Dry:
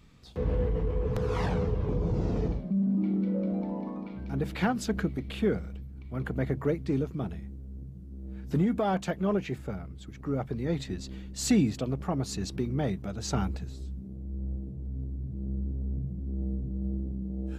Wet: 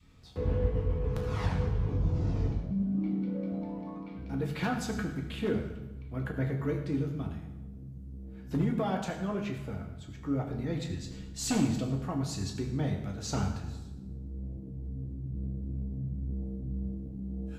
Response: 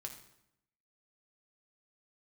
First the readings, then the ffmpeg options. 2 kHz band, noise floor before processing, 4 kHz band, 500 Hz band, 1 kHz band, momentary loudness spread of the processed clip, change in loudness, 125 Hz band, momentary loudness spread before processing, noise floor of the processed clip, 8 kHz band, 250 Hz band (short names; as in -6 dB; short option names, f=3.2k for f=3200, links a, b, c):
-2.0 dB, -44 dBFS, -1.5 dB, -4.5 dB, -3.0 dB, 11 LU, -2.5 dB, -1.0 dB, 12 LU, -44 dBFS, -1.5 dB, -3.0 dB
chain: -filter_complex "[0:a]adynamicequalizer=threshold=0.00794:dfrequency=480:dqfactor=0.82:tfrequency=480:tqfactor=0.82:attack=5:release=100:ratio=0.375:range=3:mode=cutabove:tftype=bell,aeval=exprs='0.119*(abs(mod(val(0)/0.119+3,4)-2)-1)':c=same[a];[1:a]atrim=start_sample=2205,asetrate=31752,aresample=44100[b];[a][b]afir=irnorm=-1:irlink=0"